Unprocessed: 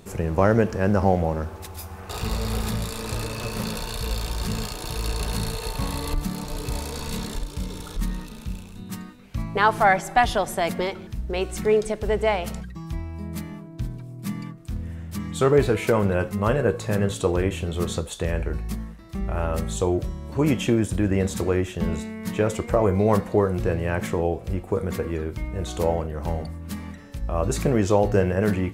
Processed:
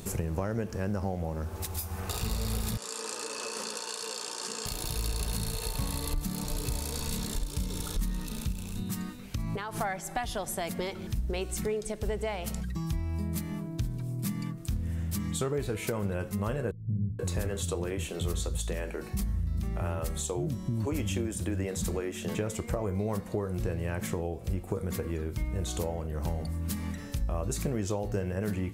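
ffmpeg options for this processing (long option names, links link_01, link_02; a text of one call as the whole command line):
ffmpeg -i in.wav -filter_complex "[0:a]asettb=1/sr,asplit=3[link_01][link_02][link_03];[link_01]atrim=end=2.774[link_04];[link_02]atrim=start=2.77:end=4.66,asetpts=PTS-STARTPTS,afade=type=in:duration=0.004:curve=qsin,afade=type=out:start_time=1.886:duration=0.004:curve=qsin,highpass=frequency=340:width=0.5412,highpass=frequency=340:width=1.3066,equalizer=frequency=340:width_type=q:width=4:gain=-5,equalizer=frequency=660:width_type=q:width=4:gain=-9,equalizer=frequency=2200:width_type=q:width=4:gain=-8,equalizer=frequency=3800:width_type=q:width=4:gain=-8,lowpass=frequency=8700:width=0.5412,lowpass=frequency=8700:width=1.3066[link_05];[link_03]atrim=start=4.656[link_06];[link_04][link_05]acrossfade=duration=0.004:curve1=hsin:curve2=qsin[link_07];[link_07][link_06]acrossfade=duration=0.004:curve1=qsin:curve2=hsin,asettb=1/sr,asplit=3[link_08][link_09][link_10];[link_08]atrim=end=8.524[link_11];[link_09]atrim=start=8.52:end=9.81,asetpts=PTS-STARTPTS,afade=type=in:duration=0.004:curve=qsin,afade=type=out:start_time=1.286:duration=0.004:curve=qsin,acompressor=threshold=-30dB:ratio=6:attack=3.2:release=140:knee=1:detection=peak[link_12];[link_10]atrim=start=9.806[link_13];[link_11][link_12]acrossfade=duration=0.004:curve1=hsin:curve2=qsin[link_14];[link_14][link_13]acrossfade=duration=0.004:curve1=qsin:curve2=hsin,asettb=1/sr,asplit=3[link_15][link_16][link_17];[link_15]atrim=end=16.714[link_18];[link_16]atrim=start=16.71:end=22.35,asetpts=PTS-STARTPTS,afade=type=in:duration=0.004:curve=qsin,afade=type=out:start_time=5.636:duration=0.004:curve=qsin,acrossover=split=220[link_19][link_20];[link_20]adelay=480[link_21];[link_19][link_21]amix=inputs=2:normalize=0,atrim=end_sample=248724[link_22];[link_17]atrim=start=22.346[link_23];[link_18][link_22]acrossfade=duration=0.004:curve1=hsin:curve2=qsin[link_24];[link_24][link_23]acrossfade=duration=0.004:curve1=qsin:curve2=hsin,highshelf=frequency=4300:gain=11.5,acompressor=threshold=-34dB:ratio=4,lowshelf=frequency=300:gain=6" out.wav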